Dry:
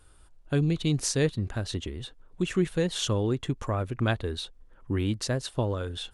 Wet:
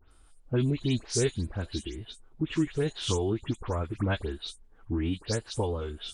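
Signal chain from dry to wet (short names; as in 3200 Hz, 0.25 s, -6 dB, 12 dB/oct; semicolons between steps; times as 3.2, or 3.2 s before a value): spectral delay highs late, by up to 0.112 s; formant-preserving pitch shift -2.5 st; gain -1.5 dB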